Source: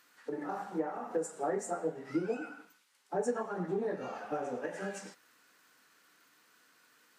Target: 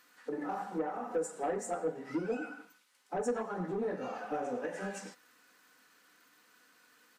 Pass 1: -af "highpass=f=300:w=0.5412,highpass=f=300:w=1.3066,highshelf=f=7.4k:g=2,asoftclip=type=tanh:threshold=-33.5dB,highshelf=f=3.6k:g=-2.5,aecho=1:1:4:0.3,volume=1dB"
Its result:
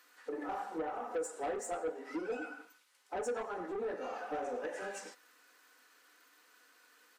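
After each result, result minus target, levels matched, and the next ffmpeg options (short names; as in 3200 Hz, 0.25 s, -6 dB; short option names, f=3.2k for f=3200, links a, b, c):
soft clip: distortion +6 dB; 250 Hz band -3.0 dB
-af "highpass=f=300:w=0.5412,highpass=f=300:w=1.3066,highshelf=f=7.4k:g=2,asoftclip=type=tanh:threshold=-27.5dB,highshelf=f=3.6k:g=-2.5,aecho=1:1:4:0.3,volume=1dB"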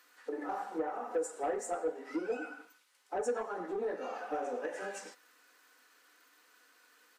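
250 Hz band -3.0 dB
-af "highshelf=f=7.4k:g=2,asoftclip=type=tanh:threshold=-27.5dB,highshelf=f=3.6k:g=-2.5,aecho=1:1:4:0.3,volume=1dB"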